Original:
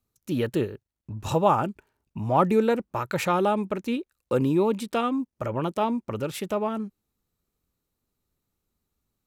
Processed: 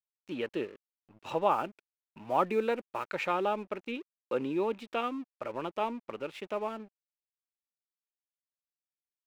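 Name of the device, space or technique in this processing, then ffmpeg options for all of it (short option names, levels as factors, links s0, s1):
pocket radio on a weak battery: -filter_complex "[0:a]highpass=300,lowpass=3700,aeval=exprs='sgn(val(0))*max(abs(val(0))-0.00376,0)':c=same,equalizer=f=2500:t=o:w=0.58:g=5.5,asettb=1/sr,asplit=3[s0][s1][s2];[s0]atrim=end=1.514[s3];[s1]atrim=start=1.51:end=3.1,asetpts=PTS-STARTPTS,afade=t=in:d=0.004:c=qsin,afade=t=out:st=1.586:d=0.004:c=qsin,highshelf=f=7800:g=9[s4];[s2]atrim=start=3.096[s5];[s3][s4]acrossfade=d=0.004:c1=hsin:c2=qsin[s6];[s6][s5]acrossfade=d=0.004:c1=qsin:c2=hsin,volume=0.501"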